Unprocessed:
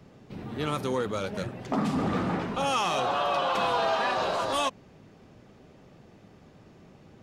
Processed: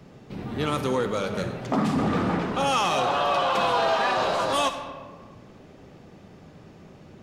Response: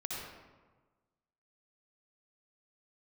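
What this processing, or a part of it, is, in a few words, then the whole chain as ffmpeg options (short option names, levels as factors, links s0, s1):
saturated reverb return: -filter_complex "[0:a]asplit=2[s0][s1];[1:a]atrim=start_sample=2205[s2];[s1][s2]afir=irnorm=-1:irlink=0,asoftclip=type=tanh:threshold=0.0473,volume=0.596[s3];[s0][s3]amix=inputs=2:normalize=0,bandreject=f=50:t=h:w=6,bandreject=f=100:t=h:w=6,volume=1.19"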